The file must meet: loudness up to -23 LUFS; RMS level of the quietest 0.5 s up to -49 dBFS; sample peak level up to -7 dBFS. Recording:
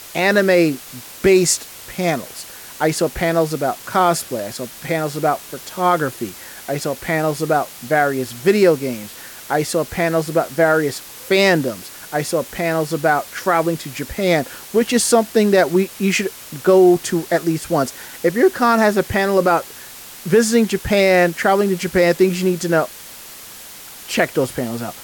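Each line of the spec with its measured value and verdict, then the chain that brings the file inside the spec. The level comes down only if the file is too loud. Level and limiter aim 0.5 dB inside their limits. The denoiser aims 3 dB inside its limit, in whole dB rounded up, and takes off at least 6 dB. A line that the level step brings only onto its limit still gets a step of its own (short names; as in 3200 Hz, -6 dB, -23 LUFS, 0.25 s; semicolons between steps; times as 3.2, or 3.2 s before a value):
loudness -18.0 LUFS: fail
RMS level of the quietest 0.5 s -37 dBFS: fail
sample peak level -3.0 dBFS: fail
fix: denoiser 10 dB, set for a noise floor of -37 dBFS; gain -5.5 dB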